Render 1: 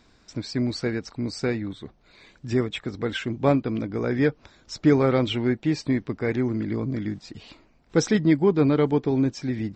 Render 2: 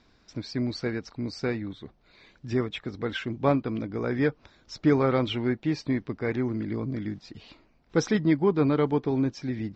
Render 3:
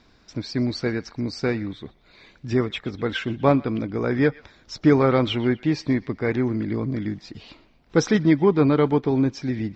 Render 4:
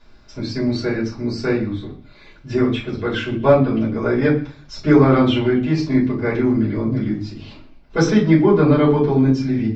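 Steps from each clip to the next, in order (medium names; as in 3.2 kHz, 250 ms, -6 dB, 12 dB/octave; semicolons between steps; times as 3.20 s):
low-pass 6.1 kHz 24 dB/octave; dynamic bell 1.1 kHz, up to +4 dB, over -37 dBFS, Q 1.6; trim -3.5 dB
band-passed feedback delay 123 ms, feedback 41%, band-pass 2.8 kHz, level -18.5 dB; trim +5 dB
simulated room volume 160 m³, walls furnished, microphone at 5.2 m; trim -7 dB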